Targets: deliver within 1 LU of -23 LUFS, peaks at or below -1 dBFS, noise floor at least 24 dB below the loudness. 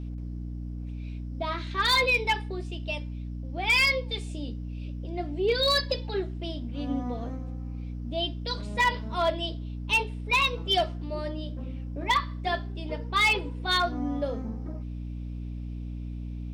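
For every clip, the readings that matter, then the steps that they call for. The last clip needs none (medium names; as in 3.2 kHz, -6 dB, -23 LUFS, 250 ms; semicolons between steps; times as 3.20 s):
clipped samples 0.3%; clipping level -17.0 dBFS; hum 60 Hz; highest harmonic 300 Hz; hum level -33 dBFS; loudness -28.5 LUFS; peak level -17.0 dBFS; loudness target -23.0 LUFS
-> clip repair -17 dBFS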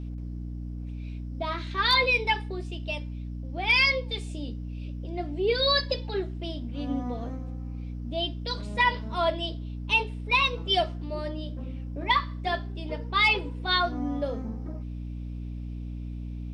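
clipped samples 0.0%; hum 60 Hz; highest harmonic 300 Hz; hum level -33 dBFS
-> de-hum 60 Hz, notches 5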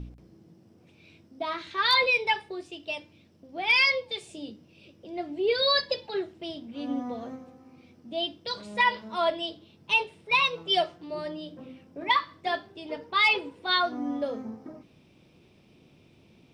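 hum not found; loudness -27.0 LUFS; peak level -10.0 dBFS; loudness target -23.0 LUFS
-> trim +4 dB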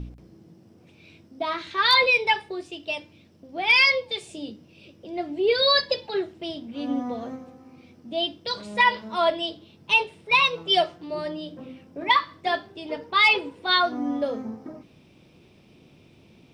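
loudness -23.0 LUFS; peak level -6.0 dBFS; noise floor -55 dBFS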